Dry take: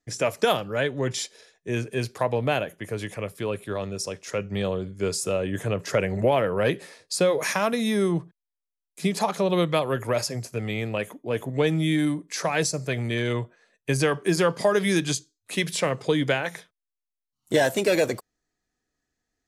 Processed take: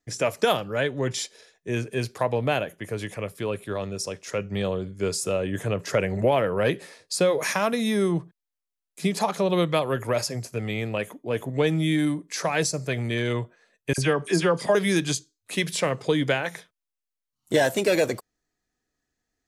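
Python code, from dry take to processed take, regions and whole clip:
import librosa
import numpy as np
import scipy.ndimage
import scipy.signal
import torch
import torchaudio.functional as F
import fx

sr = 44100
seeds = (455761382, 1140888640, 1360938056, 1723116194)

y = fx.chain(x, sr, fx.dispersion(late='lows', ms=49.0, hz=1900.0),
    fx.resample_bad(factor=2, down='none', up='filtered'), at=(13.93, 14.75))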